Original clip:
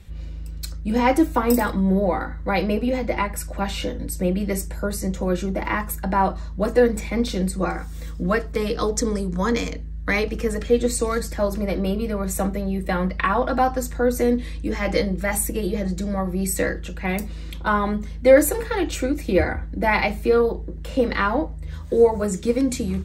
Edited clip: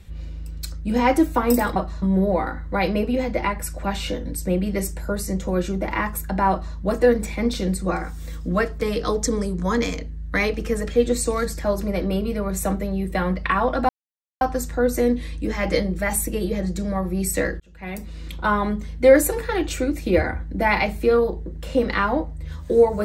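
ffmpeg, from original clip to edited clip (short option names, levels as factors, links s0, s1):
-filter_complex "[0:a]asplit=5[s0][s1][s2][s3][s4];[s0]atrim=end=1.762[s5];[s1]atrim=start=6.238:end=6.502[s6];[s2]atrim=start=1.758:end=13.63,asetpts=PTS-STARTPTS,afade=t=out:st=11.868:d=0.004:c=hsin,apad=pad_dur=0.52[s7];[s3]atrim=start=13.63:end=16.82,asetpts=PTS-STARTPTS,afade=t=in:d=0.004:c=hsin,afade=t=out:st=3.186:d=0.004:c=hsin[s8];[s4]atrim=start=16.82,asetpts=PTS-STARTPTS,afade=t=in:d=0.72[s9];[s5][s6]acrossfade=d=0.004:c1=hsin:c2=hsin[s10];[s7][s8][s9]concat=n=3:v=0:a=1[s11];[s10][s11]acrossfade=d=0.004:c1=hsin:c2=hsin"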